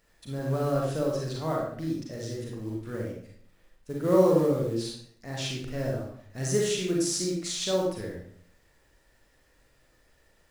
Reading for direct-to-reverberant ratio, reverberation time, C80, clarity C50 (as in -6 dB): -3.0 dB, 0.60 s, 6.0 dB, 1.5 dB